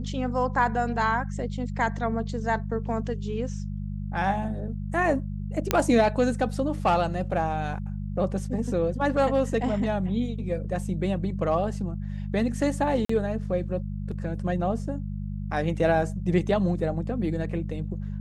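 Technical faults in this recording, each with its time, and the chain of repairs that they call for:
hum 50 Hz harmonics 4 -32 dBFS
5.71 pop -5 dBFS
13.05–13.09 gap 44 ms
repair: de-click; de-hum 50 Hz, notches 4; interpolate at 13.05, 44 ms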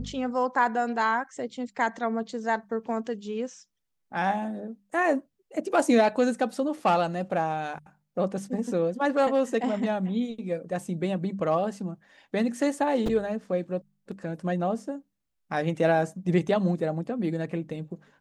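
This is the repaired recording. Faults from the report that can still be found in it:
none

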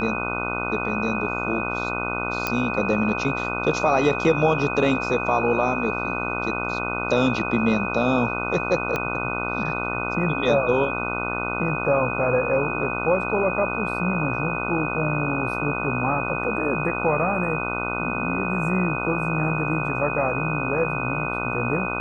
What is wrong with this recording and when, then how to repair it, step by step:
buzz 60 Hz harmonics 25 -29 dBFS
tone 2500 Hz -28 dBFS
2.47 pop -8 dBFS
8.96 pop -11 dBFS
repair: de-click; de-hum 60 Hz, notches 25; notch 2500 Hz, Q 30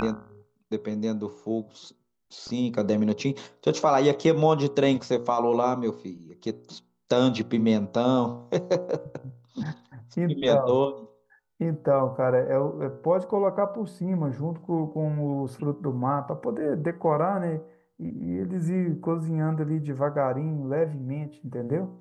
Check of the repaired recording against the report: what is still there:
8.96 pop

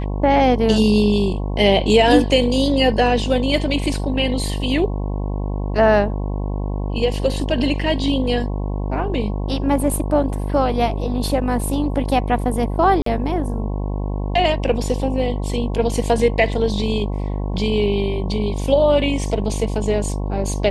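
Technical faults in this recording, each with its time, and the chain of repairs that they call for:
buzz 50 Hz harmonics 22 -23 dBFS
13.02–13.06 gap 43 ms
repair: de-hum 50 Hz, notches 22; interpolate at 13.02, 43 ms

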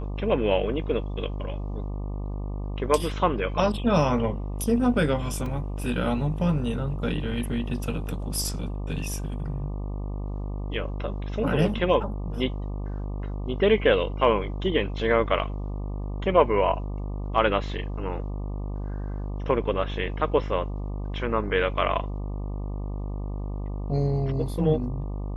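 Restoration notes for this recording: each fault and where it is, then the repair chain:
buzz 50 Hz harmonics 24 -31 dBFS
5.46 gap 2.8 ms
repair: de-hum 50 Hz, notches 24; interpolate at 5.46, 2.8 ms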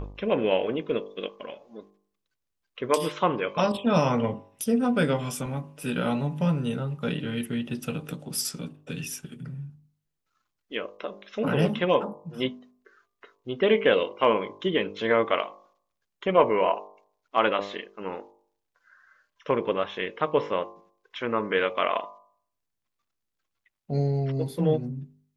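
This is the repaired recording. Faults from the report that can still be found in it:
none

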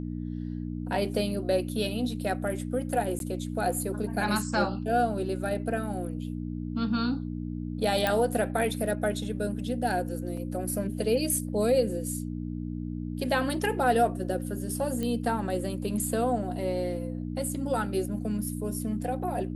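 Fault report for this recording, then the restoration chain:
hum 60 Hz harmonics 5 -34 dBFS
3.19–3.2 gap 12 ms
8.07 pop
10.37 gap 3.7 ms
15.03 pop -19 dBFS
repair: de-click; de-hum 60 Hz, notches 5; interpolate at 3.19, 12 ms; interpolate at 10.37, 3.7 ms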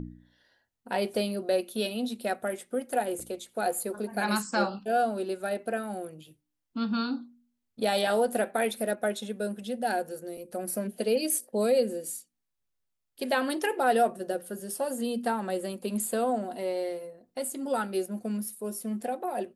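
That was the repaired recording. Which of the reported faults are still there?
none

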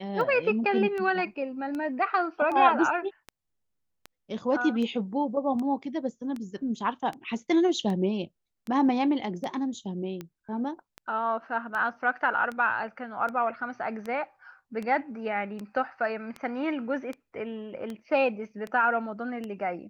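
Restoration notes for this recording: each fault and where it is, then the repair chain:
tick 78 rpm -23 dBFS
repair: de-click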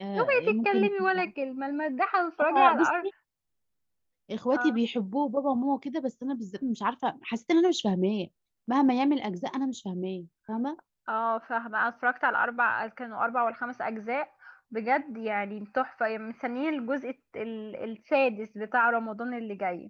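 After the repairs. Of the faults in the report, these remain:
none

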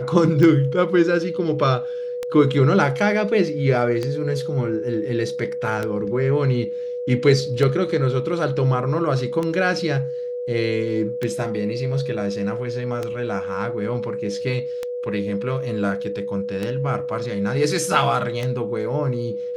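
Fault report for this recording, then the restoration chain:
tick 33 1/3 rpm -12 dBFS
tone 490 Hz -25 dBFS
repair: de-click; notch 490 Hz, Q 30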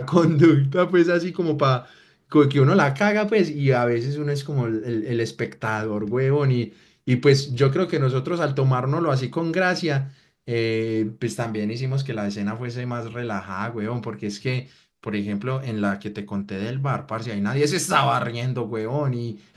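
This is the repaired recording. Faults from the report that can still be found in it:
none

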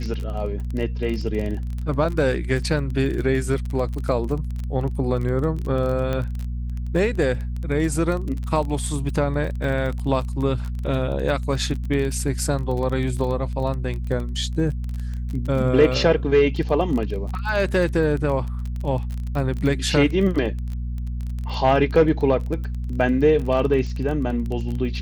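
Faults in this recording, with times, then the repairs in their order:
crackle 22/s -27 dBFS
hum 60 Hz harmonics 4 -27 dBFS
6.13 pop -14 dBFS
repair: de-click; de-hum 60 Hz, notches 4

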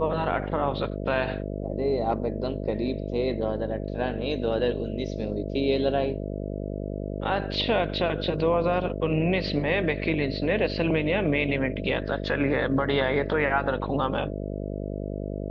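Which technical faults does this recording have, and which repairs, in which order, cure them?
buzz 50 Hz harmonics 13 -32 dBFS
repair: de-hum 50 Hz, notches 13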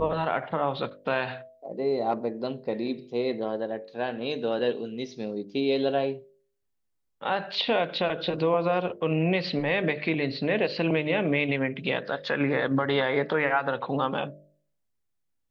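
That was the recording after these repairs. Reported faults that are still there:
none

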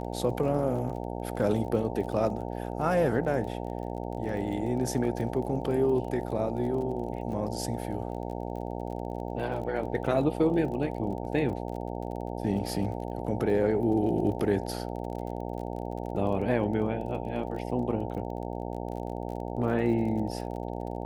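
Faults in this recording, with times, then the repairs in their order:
buzz 60 Hz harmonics 15 -35 dBFS
crackle 30/s -38 dBFS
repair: de-click; de-hum 60 Hz, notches 15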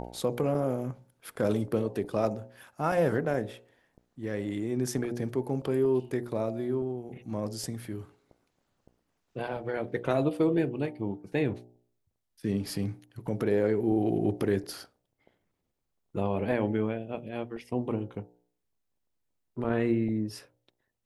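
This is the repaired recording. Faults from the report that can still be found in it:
none

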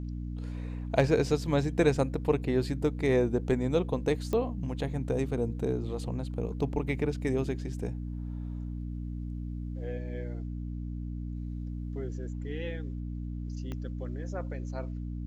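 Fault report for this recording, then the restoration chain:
hum 60 Hz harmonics 5 -36 dBFS
4.33 pop -19 dBFS
13.72 pop -25 dBFS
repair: de-click; de-hum 60 Hz, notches 5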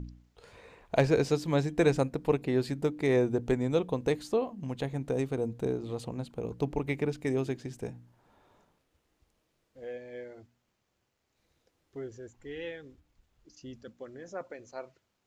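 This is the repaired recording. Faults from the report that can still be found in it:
13.72 pop

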